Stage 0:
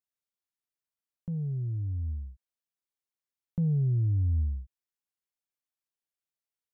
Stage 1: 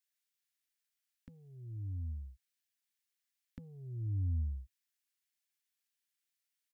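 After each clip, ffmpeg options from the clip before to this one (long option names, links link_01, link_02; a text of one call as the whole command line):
ffmpeg -i in.wav -af "firequalizer=gain_entry='entry(100,0);entry(150,-23);entry(250,6);entry(420,-9);entry(660,-8);entry(1700,13)':delay=0.05:min_phase=1,volume=-7dB" out.wav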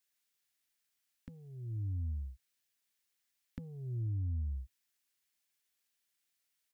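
ffmpeg -i in.wav -af "acompressor=threshold=-38dB:ratio=6,volume=5dB" out.wav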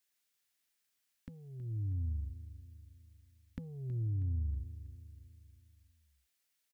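ffmpeg -i in.wav -af "aecho=1:1:321|642|963|1284|1605:0.224|0.112|0.056|0.028|0.014,volume=1dB" out.wav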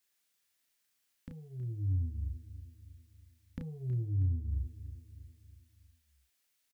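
ffmpeg -i in.wav -filter_complex "[0:a]asplit=2[link_01][link_02];[link_02]adelay=32,volume=-4dB[link_03];[link_01][link_03]amix=inputs=2:normalize=0,volume=1.5dB" out.wav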